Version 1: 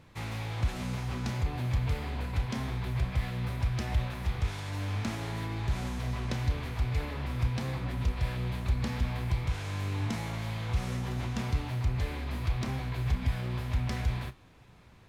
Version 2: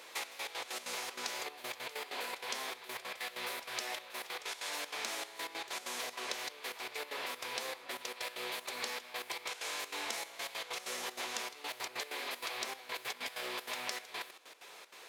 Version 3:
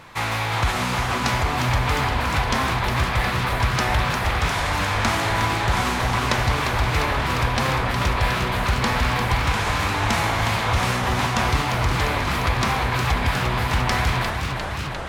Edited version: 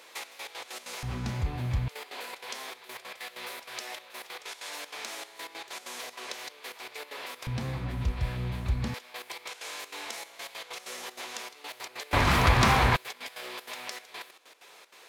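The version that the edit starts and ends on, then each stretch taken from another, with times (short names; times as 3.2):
2
1.03–1.88 from 1
7.47–8.94 from 1
12.13–12.96 from 3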